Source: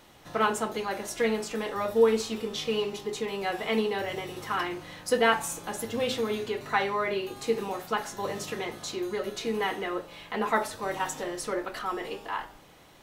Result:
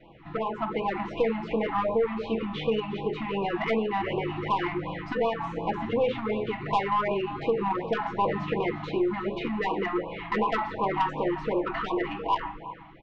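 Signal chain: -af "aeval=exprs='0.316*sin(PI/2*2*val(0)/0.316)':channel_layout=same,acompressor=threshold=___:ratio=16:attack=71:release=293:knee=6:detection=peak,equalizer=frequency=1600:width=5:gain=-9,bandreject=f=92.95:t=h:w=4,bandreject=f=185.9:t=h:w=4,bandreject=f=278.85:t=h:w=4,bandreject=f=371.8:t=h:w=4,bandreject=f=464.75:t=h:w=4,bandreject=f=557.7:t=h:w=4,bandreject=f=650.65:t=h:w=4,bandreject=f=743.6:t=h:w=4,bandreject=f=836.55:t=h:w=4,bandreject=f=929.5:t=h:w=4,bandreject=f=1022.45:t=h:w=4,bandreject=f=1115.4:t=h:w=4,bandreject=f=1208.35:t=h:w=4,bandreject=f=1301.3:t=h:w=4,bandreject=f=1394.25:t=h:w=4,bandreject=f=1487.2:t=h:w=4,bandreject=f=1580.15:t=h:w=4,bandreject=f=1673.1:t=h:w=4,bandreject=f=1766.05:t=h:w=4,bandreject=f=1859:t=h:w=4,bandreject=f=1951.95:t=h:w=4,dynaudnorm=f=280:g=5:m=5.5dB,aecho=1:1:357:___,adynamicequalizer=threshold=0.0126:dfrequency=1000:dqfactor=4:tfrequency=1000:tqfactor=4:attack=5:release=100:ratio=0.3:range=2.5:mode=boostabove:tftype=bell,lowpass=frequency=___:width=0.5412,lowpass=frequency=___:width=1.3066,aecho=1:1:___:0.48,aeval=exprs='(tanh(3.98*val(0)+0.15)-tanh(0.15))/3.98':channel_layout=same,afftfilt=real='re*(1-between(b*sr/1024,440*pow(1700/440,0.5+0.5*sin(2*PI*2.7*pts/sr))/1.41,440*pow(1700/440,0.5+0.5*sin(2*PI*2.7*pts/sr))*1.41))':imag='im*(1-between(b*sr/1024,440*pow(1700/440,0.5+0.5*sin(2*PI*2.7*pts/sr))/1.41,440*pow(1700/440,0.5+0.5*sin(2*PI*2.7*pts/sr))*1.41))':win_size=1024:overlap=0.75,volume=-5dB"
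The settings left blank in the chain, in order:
-23dB, 0.15, 2300, 2300, 6.1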